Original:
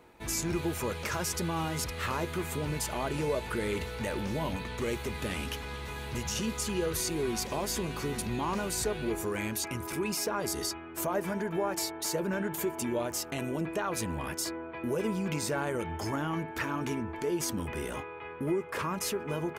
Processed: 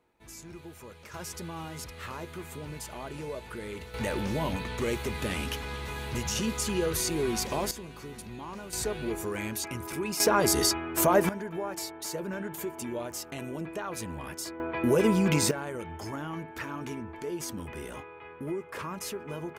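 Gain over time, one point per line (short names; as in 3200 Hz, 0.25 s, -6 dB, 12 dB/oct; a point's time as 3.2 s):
-14 dB
from 1.14 s -7 dB
from 3.94 s +2.5 dB
from 7.71 s -9 dB
from 8.73 s -0.5 dB
from 10.2 s +9 dB
from 11.29 s -3.5 dB
from 14.6 s +8 dB
from 15.51 s -4 dB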